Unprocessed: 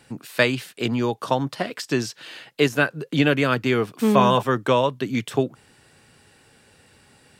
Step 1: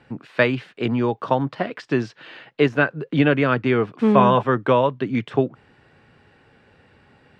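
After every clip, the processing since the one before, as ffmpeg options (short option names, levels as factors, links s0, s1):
-af "lowpass=2300,volume=1.26"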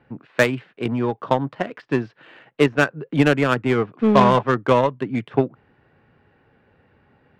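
-af "adynamicsmooth=sensitivity=2:basefreq=2700,aeval=exprs='0.891*(cos(1*acos(clip(val(0)/0.891,-1,1)))-cos(1*PI/2))+0.126*(cos(5*acos(clip(val(0)/0.891,-1,1)))-cos(5*PI/2))+0.126*(cos(7*acos(clip(val(0)/0.891,-1,1)))-cos(7*PI/2))':c=same"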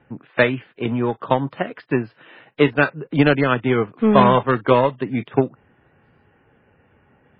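-af "volume=1.19" -ar 12000 -c:a libmp3lame -b:a 16k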